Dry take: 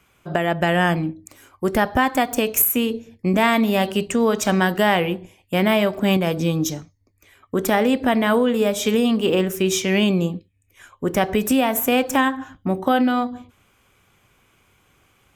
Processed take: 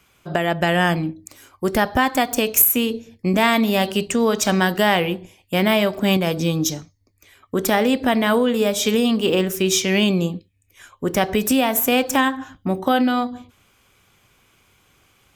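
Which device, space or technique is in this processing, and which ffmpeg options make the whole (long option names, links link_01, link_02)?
presence and air boost: -af "equalizer=frequency=4600:width_type=o:width=1.1:gain=5.5,highshelf=frequency=11000:gain=5"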